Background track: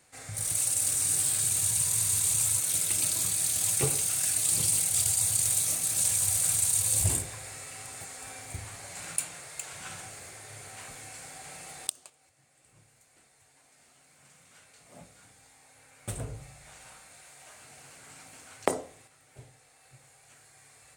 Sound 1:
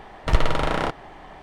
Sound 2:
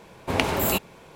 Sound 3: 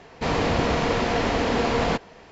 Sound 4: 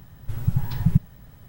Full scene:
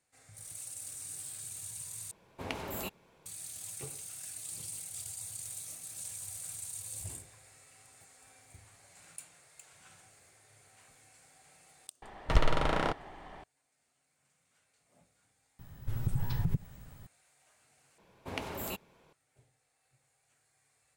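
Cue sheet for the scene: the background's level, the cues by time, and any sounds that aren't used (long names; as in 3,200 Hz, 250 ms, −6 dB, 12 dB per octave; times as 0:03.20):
background track −16.5 dB
0:02.11: overwrite with 2 −15.5 dB
0:12.02: mix in 1 −6.5 dB
0:15.59: mix in 4 −4.5 dB + downward compressor, threshold −20 dBFS
0:17.98: overwrite with 2 −15.5 dB
not used: 3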